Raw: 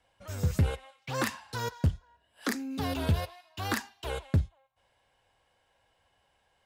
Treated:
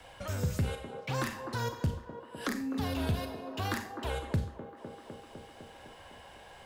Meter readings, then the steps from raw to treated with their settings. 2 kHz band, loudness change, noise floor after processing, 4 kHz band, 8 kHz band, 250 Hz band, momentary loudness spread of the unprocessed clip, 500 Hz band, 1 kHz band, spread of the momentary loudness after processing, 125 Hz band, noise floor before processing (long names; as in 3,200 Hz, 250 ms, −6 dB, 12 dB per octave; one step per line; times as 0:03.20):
−2.5 dB, −3.0 dB, −53 dBFS, −2.0 dB, −3.0 dB, −1.0 dB, 11 LU, 0.0 dB, −0.5 dB, 17 LU, −3.5 dB, −72 dBFS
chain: delay with a band-pass on its return 253 ms, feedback 54%, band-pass 560 Hz, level −8 dB
four-comb reverb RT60 0.36 s, combs from 30 ms, DRR 7 dB
multiband upward and downward compressor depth 70%
level −3 dB